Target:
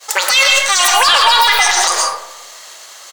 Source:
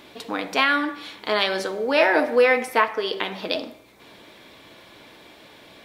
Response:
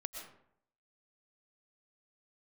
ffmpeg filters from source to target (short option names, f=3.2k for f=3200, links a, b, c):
-filter_complex "[0:a]aemphasis=mode=production:type=riaa,agate=range=-33dB:threshold=-36dB:ratio=3:detection=peak,aresample=22050,aresample=44100,asetrate=82467,aresample=44100,asplit=2[a][b];[b]highpass=f=720:p=1,volume=9dB,asoftclip=type=tanh:threshold=-6dB[c];[a][c]amix=inputs=2:normalize=0,lowpass=f=6.6k:p=1,volume=-6dB,asplit=2[d][e];[e]adelay=249,lowpass=f=950:p=1,volume=-18dB,asplit=2[f][g];[g]adelay=249,lowpass=f=950:p=1,volume=0.39,asplit=2[h][i];[i]adelay=249,lowpass=f=950:p=1,volume=0.39[j];[f][h][j]amix=inputs=3:normalize=0[k];[d][k]amix=inputs=2:normalize=0[l];[1:a]atrim=start_sample=2205[m];[l][m]afir=irnorm=-1:irlink=0,alimiter=level_in=18dB:limit=-1dB:release=50:level=0:latency=1,volume=-1dB"